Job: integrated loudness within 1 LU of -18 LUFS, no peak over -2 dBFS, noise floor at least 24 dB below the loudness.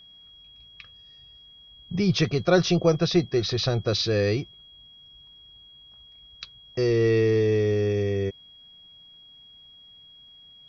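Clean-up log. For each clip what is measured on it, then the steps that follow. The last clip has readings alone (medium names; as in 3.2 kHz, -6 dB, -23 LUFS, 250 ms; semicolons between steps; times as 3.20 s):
steady tone 3.3 kHz; tone level -48 dBFS; loudness -23.5 LUFS; peak level -8.5 dBFS; loudness target -18.0 LUFS
-> band-stop 3.3 kHz, Q 30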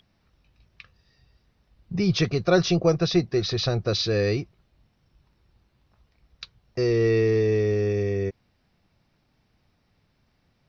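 steady tone not found; loudness -23.5 LUFS; peak level -8.5 dBFS; loudness target -18.0 LUFS
-> trim +5.5 dB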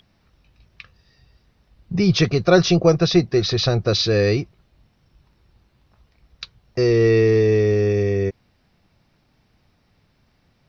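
loudness -18.0 LUFS; peak level -3.0 dBFS; noise floor -63 dBFS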